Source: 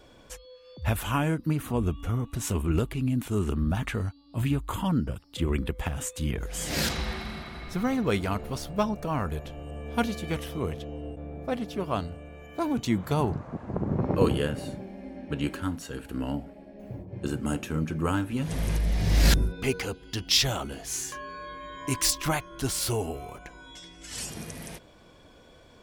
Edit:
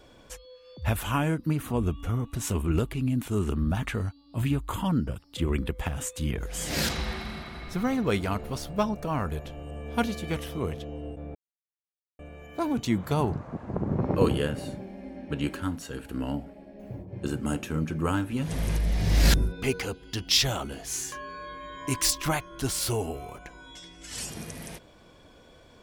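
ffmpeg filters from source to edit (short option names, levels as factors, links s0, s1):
-filter_complex "[0:a]asplit=3[s0][s1][s2];[s0]atrim=end=11.35,asetpts=PTS-STARTPTS,afade=t=out:st=11.346:d=0.004:c=hsin[s3];[s1]atrim=start=11.35:end=12.19,asetpts=PTS-STARTPTS,volume=0[s4];[s2]atrim=start=12.19,asetpts=PTS-STARTPTS,afade=t=in:d=0.004:c=hsin[s5];[s3][s4][s5]concat=n=3:v=0:a=1"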